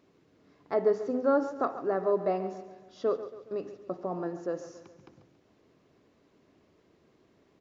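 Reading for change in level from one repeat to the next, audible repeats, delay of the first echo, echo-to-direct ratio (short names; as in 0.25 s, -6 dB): -6.0 dB, 4, 0.139 s, -12.5 dB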